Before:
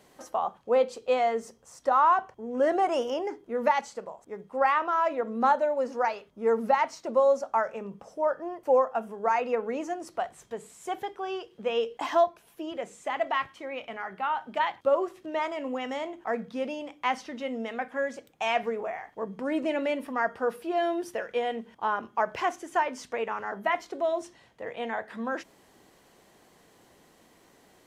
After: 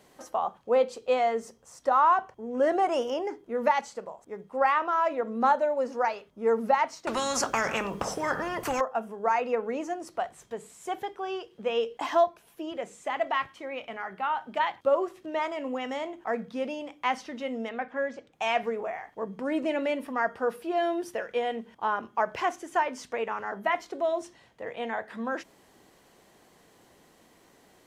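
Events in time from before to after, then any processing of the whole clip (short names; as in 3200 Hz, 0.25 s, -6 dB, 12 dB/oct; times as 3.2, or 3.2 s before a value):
7.07–8.81 spectral compressor 4:1
17.69–18.33 air absorption 120 m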